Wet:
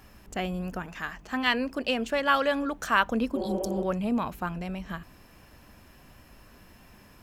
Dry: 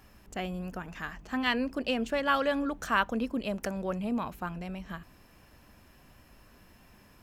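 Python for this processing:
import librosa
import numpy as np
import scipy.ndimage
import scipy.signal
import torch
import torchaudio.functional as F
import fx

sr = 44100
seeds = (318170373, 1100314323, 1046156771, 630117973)

y = fx.low_shelf(x, sr, hz=340.0, db=-5.5, at=(0.86, 3.05))
y = fx.spec_repair(y, sr, seeds[0], start_s=3.38, length_s=0.42, low_hz=230.0, high_hz=3300.0, source='after')
y = F.gain(torch.from_numpy(y), 4.0).numpy()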